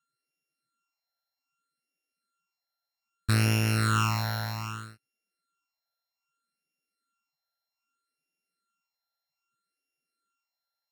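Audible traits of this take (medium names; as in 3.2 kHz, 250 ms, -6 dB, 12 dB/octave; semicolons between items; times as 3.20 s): a buzz of ramps at a fixed pitch in blocks of 32 samples; phasing stages 8, 0.63 Hz, lowest notch 350–1200 Hz; Vorbis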